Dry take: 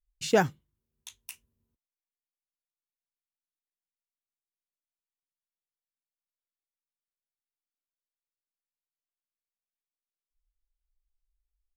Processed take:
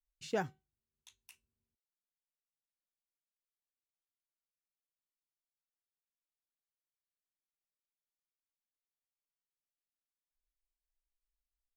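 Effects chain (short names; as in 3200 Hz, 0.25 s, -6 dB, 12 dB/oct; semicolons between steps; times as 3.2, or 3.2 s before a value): high shelf 8200 Hz -8 dB; resonator 380 Hz, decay 0.26 s, harmonics all, mix 40%; gain -8 dB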